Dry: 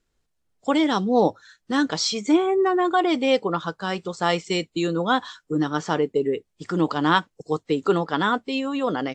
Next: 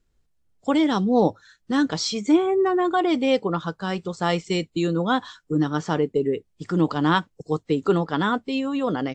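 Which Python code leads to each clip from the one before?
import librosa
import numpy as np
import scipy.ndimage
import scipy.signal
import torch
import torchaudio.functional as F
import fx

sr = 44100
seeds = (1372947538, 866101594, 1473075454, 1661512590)

y = fx.low_shelf(x, sr, hz=230.0, db=9.5)
y = y * 10.0 ** (-2.5 / 20.0)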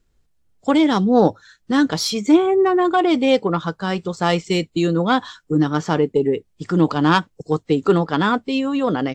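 y = fx.self_delay(x, sr, depth_ms=0.056)
y = y * 10.0 ** (4.5 / 20.0)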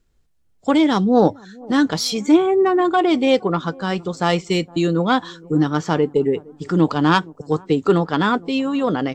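y = fx.echo_wet_lowpass(x, sr, ms=464, feedback_pct=41, hz=900.0, wet_db=-23.5)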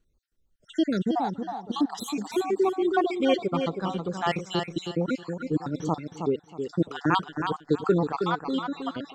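y = fx.spec_dropout(x, sr, seeds[0], share_pct=58)
y = fx.echo_feedback(y, sr, ms=318, feedback_pct=23, wet_db=-6.5)
y = y * 10.0 ** (-6.0 / 20.0)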